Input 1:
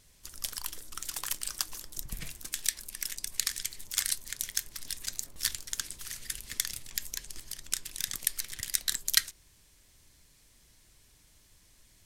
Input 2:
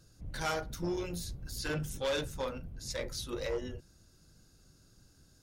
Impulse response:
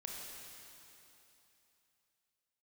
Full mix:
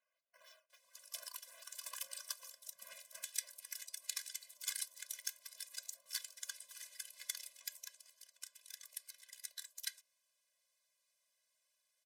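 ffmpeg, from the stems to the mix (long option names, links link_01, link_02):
-filter_complex "[0:a]adelay=700,volume=-7.5dB,afade=type=out:start_time=7.66:duration=0.51:silence=0.421697[link_01];[1:a]aderivative,acrusher=samples=8:mix=1:aa=0.000001:lfo=1:lforange=8:lforate=3.5,volume=-14.5dB[link_02];[link_01][link_02]amix=inputs=2:normalize=0,highpass=frequency=440:width=0.5412,highpass=frequency=440:width=1.3066,afftfilt=real='re*eq(mod(floor(b*sr/1024/240),2),0)':imag='im*eq(mod(floor(b*sr/1024/240),2),0)':win_size=1024:overlap=0.75"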